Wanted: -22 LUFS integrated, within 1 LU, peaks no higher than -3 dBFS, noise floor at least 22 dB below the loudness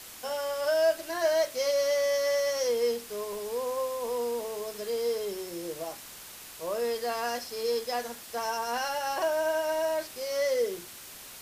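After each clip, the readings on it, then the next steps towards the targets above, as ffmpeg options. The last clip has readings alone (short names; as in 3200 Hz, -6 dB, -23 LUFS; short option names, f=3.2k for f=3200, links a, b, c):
noise floor -46 dBFS; noise floor target -52 dBFS; loudness -30.0 LUFS; peak -16.0 dBFS; loudness target -22.0 LUFS
-> -af "afftdn=nr=6:nf=-46"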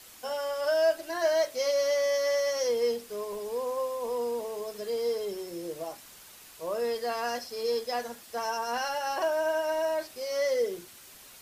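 noise floor -51 dBFS; noise floor target -52 dBFS
-> -af "afftdn=nr=6:nf=-51"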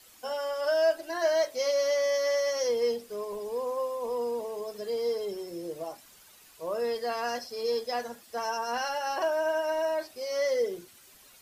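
noise floor -56 dBFS; loudness -30.0 LUFS; peak -16.5 dBFS; loudness target -22.0 LUFS
-> -af "volume=8dB"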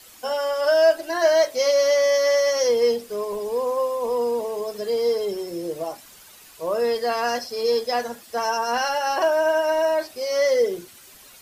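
loudness -22.0 LUFS; peak -8.5 dBFS; noise floor -48 dBFS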